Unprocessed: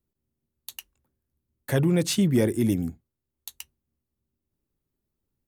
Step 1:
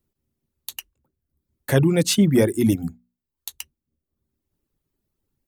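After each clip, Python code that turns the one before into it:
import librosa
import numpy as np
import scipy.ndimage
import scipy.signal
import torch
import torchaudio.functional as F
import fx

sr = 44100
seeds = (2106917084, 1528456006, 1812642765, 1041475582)

y = fx.hum_notches(x, sr, base_hz=60, count=4)
y = fx.dereverb_blind(y, sr, rt60_s=0.68)
y = y * 10.0 ** (6.0 / 20.0)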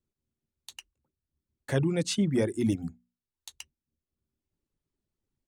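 y = fx.rider(x, sr, range_db=10, speed_s=0.5)
y = scipy.signal.savgol_filter(y, 9, 4, mode='constant')
y = y * 10.0 ** (-8.0 / 20.0)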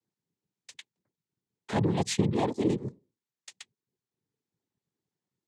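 y = fx.noise_vocoder(x, sr, seeds[0], bands=6)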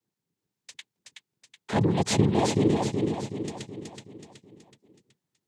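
y = fx.echo_feedback(x, sr, ms=374, feedback_pct=48, wet_db=-4)
y = y * 10.0 ** (3.0 / 20.0)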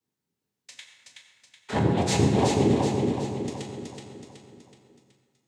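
y = fx.rev_fdn(x, sr, rt60_s=1.8, lf_ratio=0.8, hf_ratio=0.6, size_ms=73.0, drr_db=-0.5)
y = y * 10.0 ** (-1.5 / 20.0)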